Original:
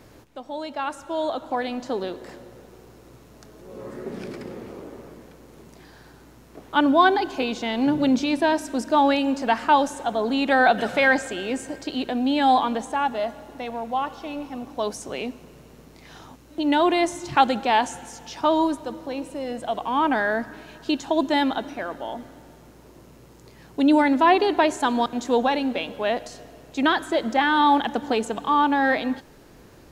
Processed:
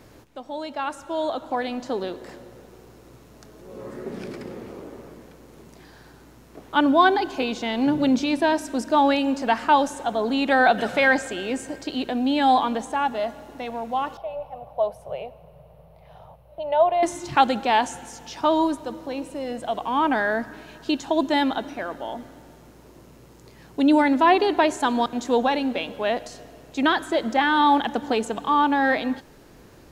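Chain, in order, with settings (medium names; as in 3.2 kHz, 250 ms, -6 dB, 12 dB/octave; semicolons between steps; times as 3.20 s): 14.17–17.03 s: FFT filter 160 Hz 0 dB, 280 Hz -29 dB, 600 Hz +8 dB, 1.6 kHz -14 dB, 2.9 kHz -10 dB, 7 kHz -28 dB, 11 kHz -10 dB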